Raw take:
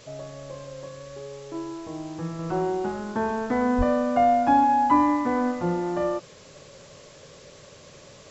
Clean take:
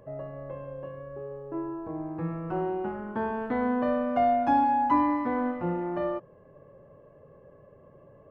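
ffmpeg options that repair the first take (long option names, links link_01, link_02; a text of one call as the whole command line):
ffmpeg -i in.wav -filter_complex "[0:a]asplit=3[link_01][link_02][link_03];[link_01]afade=type=out:start_time=3.77:duration=0.02[link_04];[link_02]highpass=frequency=140:width=0.5412,highpass=frequency=140:width=1.3066,afade=type=in:start_time=3.77:duration=0.02,afade=type=out:start_time=3.89:duration=0.02[link_05];[link_03]afade=type=in:start_time=3.89:duration=0.02[link_06];[link_04][link_05][link_06]amix=inputs=3:normalize=0,afwtdn=0.004,asetnsamples=nb_out_samples=441:pad=0,asendcmd='2.39 volume volume -4dB',volume=0dB" out.wav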